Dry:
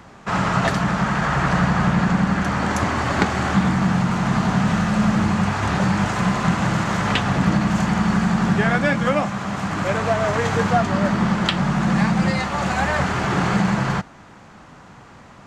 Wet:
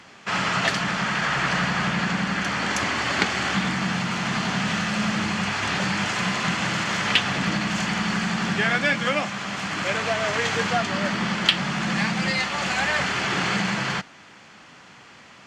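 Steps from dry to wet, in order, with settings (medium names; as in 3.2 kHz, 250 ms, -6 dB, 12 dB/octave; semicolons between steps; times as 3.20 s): frequency weighting D; in parallel at -9.5 dB: saturation -8.5 dBFS, distortion -17 dB; on the sum: band-stop 3.8 kHz, Q 17; trim -7.5 dB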